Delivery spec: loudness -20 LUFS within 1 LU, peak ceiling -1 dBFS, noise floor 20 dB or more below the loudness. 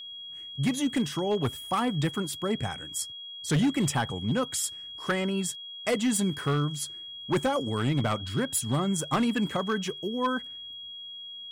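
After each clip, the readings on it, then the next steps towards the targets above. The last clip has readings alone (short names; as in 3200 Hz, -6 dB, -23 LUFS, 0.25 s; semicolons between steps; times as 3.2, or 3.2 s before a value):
clipped 1.5%; flat tops at -20.0 dBFS; steady tone 3300 Hz; tone level -39 dBFS; loudness -29.0 LUFS; peak -20.0 dBFS; loudness target -20.0 LUFS
-> clip repair -20 dBFS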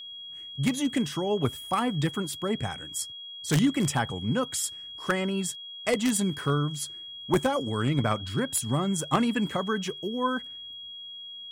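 clipped 0.0%; steady tone 3300 Hz; tone level -39 dBFS
-> notch 3300 Hz, Q 30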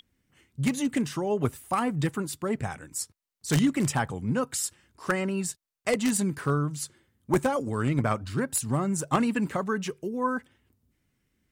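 steady tone none; loudness -28.5 LUFS; peak -10.5 dBFS; loudness target -20.0 LUFS
-> gain +8.5 dB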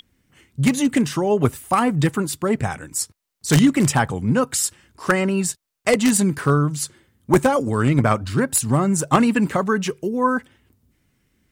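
loudness -20.0 LUFS; peak -2.0 dBFS; noise floor -68 dBFS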